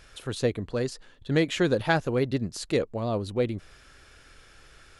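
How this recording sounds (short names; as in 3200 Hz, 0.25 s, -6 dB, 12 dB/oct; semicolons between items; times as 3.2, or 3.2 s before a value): noise floor -55 dBFS; spectral tilt -5.0 dB/oct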